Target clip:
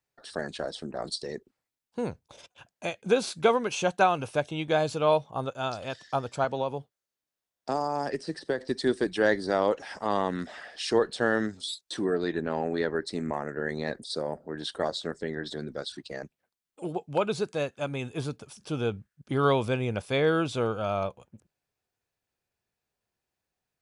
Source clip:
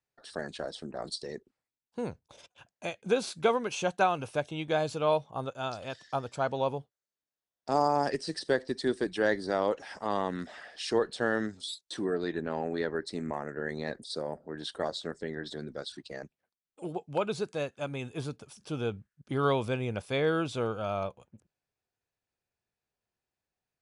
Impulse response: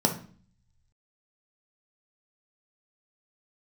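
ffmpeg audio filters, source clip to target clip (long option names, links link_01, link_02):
-filter_complex "[0:a]asettb=1/sr,asplit=3[link_01][link_02][link_03];[link_01]atrim=end=6.444[link_04];[link_02]atrim=start=6.44:end=8.61,asetpts=PTS-STARTPTS,afade=type=in:duration=0.004:curve=qsin,afade=type=out:start_time=2.166:duration=0.004:curve=qsin,acrossover=split=120|2200[link_05][link_06][link_07];[link_05]acompressor=threshold=-56dB:ratio=4[link_08];[link_06]acompressor=threshold=-29dB:ratio=4[link_09];[link_07]acompressor=threshold=-50dB:ratio=4[link_10];[link_08][link_09][link_10]amix=inputs=3:normalize=0[link_11];[link_03]atrim=start=8.606[link_12];[link_04][link_11]acrossfade=duration=0.004:curve1=hsin:curve2=qsin[link_13];[link_13][link_12]acrossfade=duration=0.004:curve1=qsin:curve2=hsin,volume=3.5dB"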